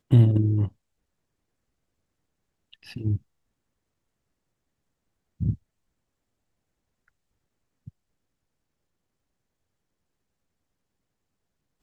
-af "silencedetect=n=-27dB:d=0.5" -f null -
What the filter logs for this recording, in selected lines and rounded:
silence_start: 0.67
silence_end: 2.96 | silence_duration: 2.30
silence_start: 3.16
silence_end: 5.41 | silence_duration: 2.25
silence_start: 5.53
silence_end: 11.82 | silence_duration: 6.29